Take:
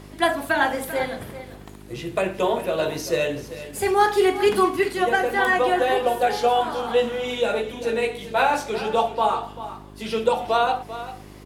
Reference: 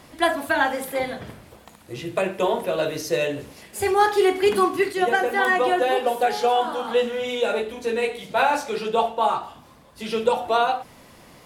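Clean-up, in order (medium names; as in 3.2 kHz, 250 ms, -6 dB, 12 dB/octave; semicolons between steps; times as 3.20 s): de-hum 50.7 Hz, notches 8; inverse comb 392 ms -13.5 dB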